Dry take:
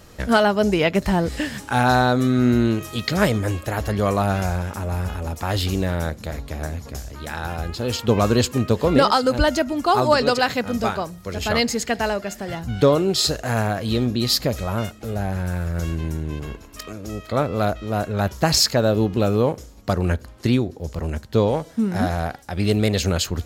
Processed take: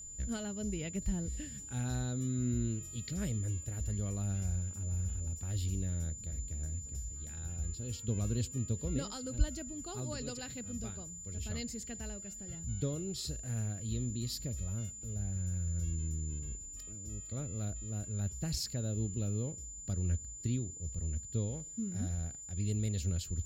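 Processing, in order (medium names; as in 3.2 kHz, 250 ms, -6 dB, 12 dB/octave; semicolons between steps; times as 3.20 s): amplifier tone stack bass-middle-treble 10-0-1; whistle 7.1 kHz -45 dBFS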